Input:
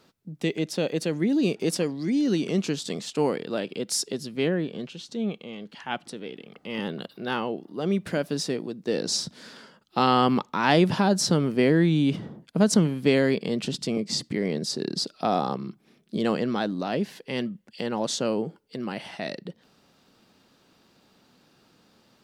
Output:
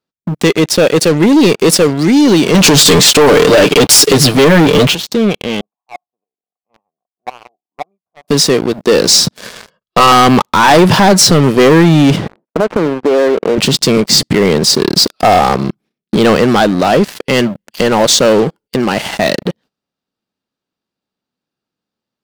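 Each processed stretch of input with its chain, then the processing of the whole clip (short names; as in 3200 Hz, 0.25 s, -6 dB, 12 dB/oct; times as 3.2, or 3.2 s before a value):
2.54–4.95 comb 6.8 ms, depth 69% + compressor, threshold -25 dBFS + sample leveller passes 3
5.61–8.28 chopper 1.9 Hz, depth 65%, duty 20% + vocal tract filter a
9.37–10.12 air absorption 100 m + comb 1.8 ms, depth 77%
12.28–13.58 median filter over 25 samples + Butterworth band-pass 760 Hz, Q 0.57 + compressor, threshold -26 dBFS
whole clip: gate -54 dBFS, range -16 dB; dynamic EQ 230 Hz, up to -6 dB, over -36 dBFS, Q 1.1; sample leveller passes 5; gain +4 dB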